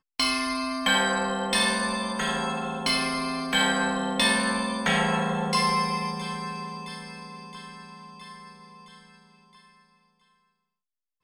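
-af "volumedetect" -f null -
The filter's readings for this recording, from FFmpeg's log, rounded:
mean_volume: -28.4 dB
max_volume: -9.6 dB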